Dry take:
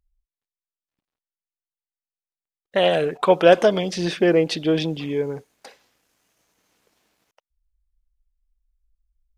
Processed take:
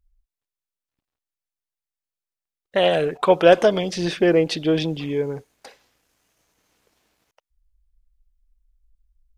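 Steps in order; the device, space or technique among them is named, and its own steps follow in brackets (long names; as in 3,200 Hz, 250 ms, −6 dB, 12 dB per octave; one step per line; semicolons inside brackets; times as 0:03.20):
low shelf boost with a cut just above (low-shelf EQ 110 Hz +7.5 dB; parametric band 190 Hz −2.5 dB)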